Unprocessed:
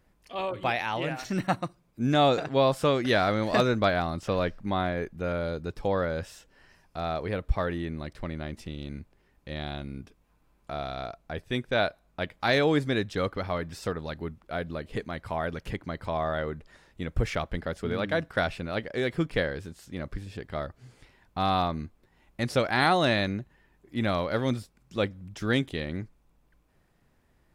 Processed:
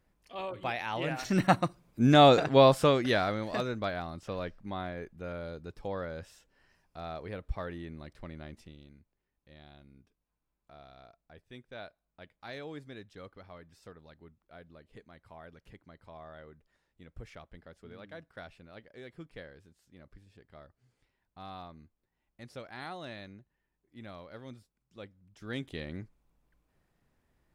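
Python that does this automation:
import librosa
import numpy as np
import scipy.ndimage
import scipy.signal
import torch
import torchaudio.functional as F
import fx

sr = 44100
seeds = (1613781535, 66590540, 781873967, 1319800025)

y = fx.gain(x, sr, db=fx.line((0.77, -6.5), (1.42, 3.0), (2.66, 3.0), (3.56, -9.5), (8.54, -9.5), (8.97, -19.5), (25.27, -19.5), (25.74, -7.0)))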